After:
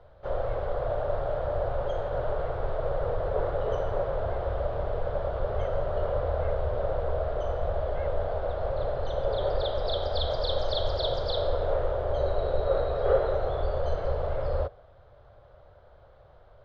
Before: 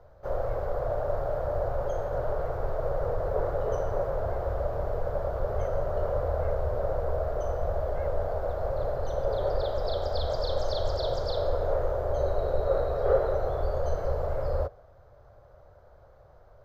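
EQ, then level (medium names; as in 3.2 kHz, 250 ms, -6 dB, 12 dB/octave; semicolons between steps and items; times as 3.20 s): resonant low-pass 3.4 kHz, resonance Q 3; 0.0 dB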